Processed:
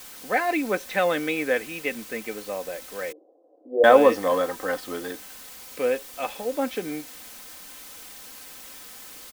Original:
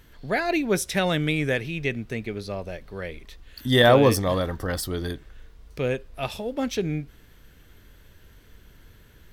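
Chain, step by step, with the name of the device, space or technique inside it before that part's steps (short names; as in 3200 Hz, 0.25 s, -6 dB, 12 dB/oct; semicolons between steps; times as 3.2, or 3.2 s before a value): wax cylinder (BPF 390–2200 Hz; wow and flutter; white noise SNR 17 dB); 3.12–3.84 elliptic band-pass 310–680 Hz, stop band 60 dB; comb 3.9 ms, depth 57%; gain +2 dB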